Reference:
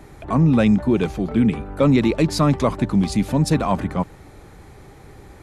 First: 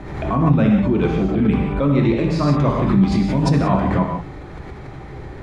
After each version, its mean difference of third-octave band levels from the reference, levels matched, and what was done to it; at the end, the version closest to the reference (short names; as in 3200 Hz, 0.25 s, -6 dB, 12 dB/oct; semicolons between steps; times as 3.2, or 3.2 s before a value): 6.0 dB: Bessel low-pass 3000 Hz, order 2; reverse; compressor, threshold -23 dBFS, peak gain reduction 11.5 dB; reverse; non-linear reverb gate 0.2 s flat, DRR -1.5 dB; backwards sustainer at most 49 dB/s; gain +5 dB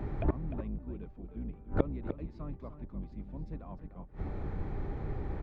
10.5 dB: octaver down 2 oct, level +3 dB; flipped gate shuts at -19 dBFS, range -30 dB; tape spacing loss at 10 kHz 41 dB; echo 0.301 s -10.5 dB; gain +4 dB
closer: first